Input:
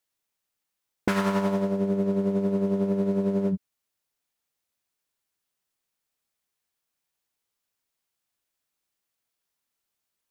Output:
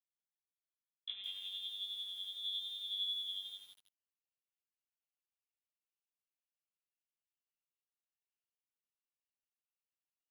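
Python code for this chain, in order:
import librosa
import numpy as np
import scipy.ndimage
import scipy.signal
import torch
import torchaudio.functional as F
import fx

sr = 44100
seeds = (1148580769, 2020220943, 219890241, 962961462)

y = fx.rider(x, sr, range_db=10, speed_s=0.5)
y = fx.filter_sweep_bandpass(y, sr, from_hz=440.0, to_hz=1000.0, start_s=3.3, end_s=4.11, q=3.8)
y = fx.chorus_voices(y, sr, voices=2, hz=0.9, base_ms=20, depth_ms=1.3, mix_pct=55)
y = fx.freq_invert(y, sr, carrier_hz=3800)
y = fx.tilt_shelf(y, sr, db=4.5, hz=970.0)
y = fx.echo_crushed(y, sr, ms=162, feedback_pct=35, bits=9, wet_db=-5.5)
y = y * librosa.db_to_amplitude(-3.5)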